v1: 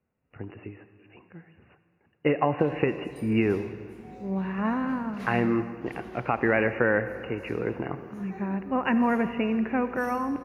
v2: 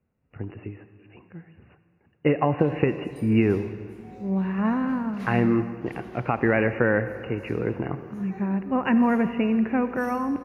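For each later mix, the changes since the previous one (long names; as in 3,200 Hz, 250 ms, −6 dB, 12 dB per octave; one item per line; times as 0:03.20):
speech: add low-shelf EQ 250 Hz +7.5 dB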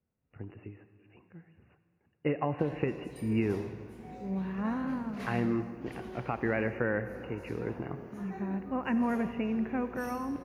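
speech −9.0 dB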